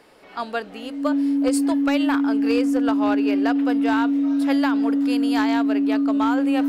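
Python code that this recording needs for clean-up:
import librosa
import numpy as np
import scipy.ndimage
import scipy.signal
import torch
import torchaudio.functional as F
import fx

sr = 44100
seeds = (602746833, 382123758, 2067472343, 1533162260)

y = fx.fix_declip(x, sr, threshold_db=-13.0)
y = fx.notch(y, sr, hz=280.0, q=30.0)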